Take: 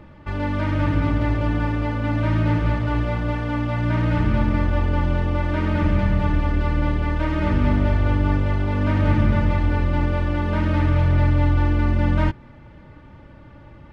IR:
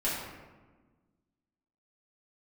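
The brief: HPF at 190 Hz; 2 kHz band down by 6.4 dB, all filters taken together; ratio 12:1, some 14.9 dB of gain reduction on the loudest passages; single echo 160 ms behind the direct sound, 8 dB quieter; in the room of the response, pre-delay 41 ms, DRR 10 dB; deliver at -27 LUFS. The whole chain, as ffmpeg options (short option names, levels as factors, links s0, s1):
-filter_complex "[0:a]highpass=190,equalizer=f=2000:t=o:g=-9,acompressor=threshold=0.0158:ratio=12,aecho=1:1:160:0.398,asplit=2[s0][s1];[1:a]atrim=start_sample=2205,adelay=41[s2];[s1][s2]afir=irnorm=-1:irlink=0,volume=0.126[s3];[s0][s3]amix=inputs=2:normalize=0,volume=3.55"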